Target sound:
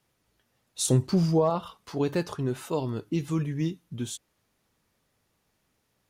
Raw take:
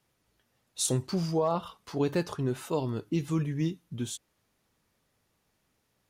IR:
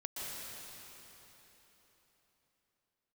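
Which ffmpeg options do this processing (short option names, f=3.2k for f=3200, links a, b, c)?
-filter_complex "[0:a]asettb=1/sr,asplit=3[a][b][c];[a]atrim=end=0.874[d];[b]atrim=start=0.87:end=1.5,asetpts=PTS-STARTPTS,afade=t=in:d=0.004:c=qsin,afade=t=out:st=0.626:d=0.004:c=qsin,lowshelf=f=460:g=7[e];[c]atrim=start=1.496[f];[d][e]acrossfade=d=0.004:c1=hsin:c2=qsin[g];[g][f]acrossfade=d=0.004:c1=qsin:c2=hsin,volume=1dB"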